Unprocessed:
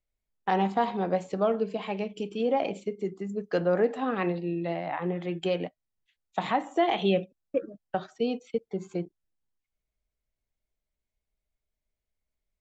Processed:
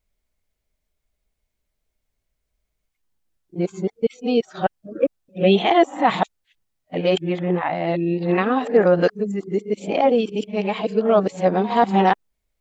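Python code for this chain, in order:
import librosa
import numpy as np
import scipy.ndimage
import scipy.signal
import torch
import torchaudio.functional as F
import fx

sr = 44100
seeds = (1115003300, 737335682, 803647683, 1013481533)

y = np.flip(x).copy()
y = F.gain(torch.from_numpy(y), 9.0).numpy()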